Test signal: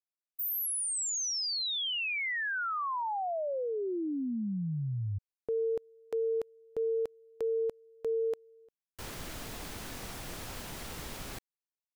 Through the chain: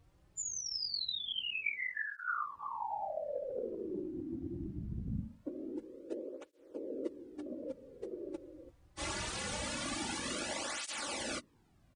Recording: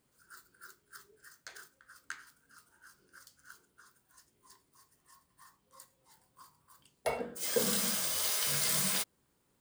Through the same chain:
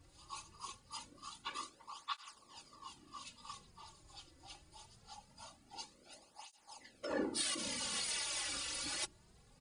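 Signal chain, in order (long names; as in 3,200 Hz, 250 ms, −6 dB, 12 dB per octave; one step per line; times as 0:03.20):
partials spread apart or drawn together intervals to 82%
mains-hum notches 60/120/180/240 Hz
random phases in short frames
comb filter 3.5 ms, depth 65%
compressor whose output falls as the input rises −39 dBFS, ratio −1
background noise brown −60 dBFS
through-zero flanger with one copy inverted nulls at 0.23 Hz, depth 4.9 ms
level +2.5 dB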